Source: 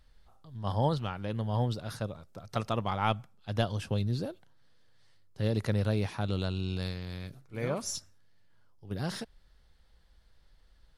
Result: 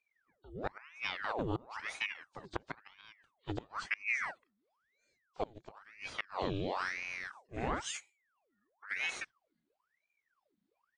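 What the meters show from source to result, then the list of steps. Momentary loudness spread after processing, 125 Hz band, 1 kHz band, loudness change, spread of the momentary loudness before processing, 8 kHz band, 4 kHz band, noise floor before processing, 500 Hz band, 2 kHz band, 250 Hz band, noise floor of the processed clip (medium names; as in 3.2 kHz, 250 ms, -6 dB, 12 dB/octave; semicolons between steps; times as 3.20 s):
16 LU, -16.5 dB, -5.0 dB, -5.5 dB, 11 LU, -5.0 dB, -4.0 dB, -62 dBFS, -7.5 dB, +6.5 dB, -10.0 dB, -84 dBFS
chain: knee-point frequency compression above 3.1 kHz 1.5:1; spectral noise reduction 19 dB; inverted gate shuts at -19 dBFS, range -27 dB; ring modulator with a swept carrier 1.3 kHz, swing 85%, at 0.99 Hz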